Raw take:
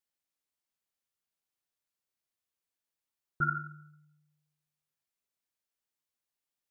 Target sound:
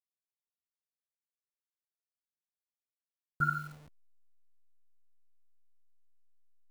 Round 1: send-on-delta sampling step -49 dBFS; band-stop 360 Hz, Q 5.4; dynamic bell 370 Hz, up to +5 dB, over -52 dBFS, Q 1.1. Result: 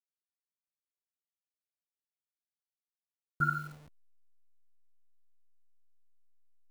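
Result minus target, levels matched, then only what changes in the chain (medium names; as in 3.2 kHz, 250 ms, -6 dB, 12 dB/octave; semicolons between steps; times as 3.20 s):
500 Hz band +2.5 dB
remove: dynamic bell 370 Hz, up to +5 dB, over -52 dBFS, Q 1.1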